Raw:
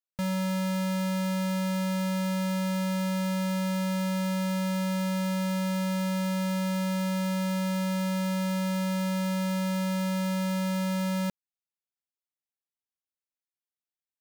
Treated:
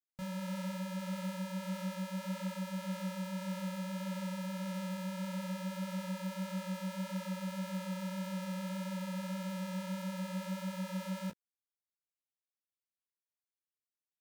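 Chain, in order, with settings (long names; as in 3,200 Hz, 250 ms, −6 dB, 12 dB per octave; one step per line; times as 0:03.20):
micro pitch shift up and down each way 58 cents
level −7 dB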